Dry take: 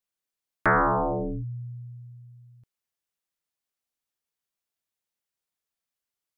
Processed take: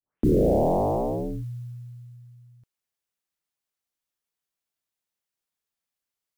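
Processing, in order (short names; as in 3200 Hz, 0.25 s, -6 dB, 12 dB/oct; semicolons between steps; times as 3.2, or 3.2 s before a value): tape start at the beginning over 1.27 s; modulation noise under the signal 32 dB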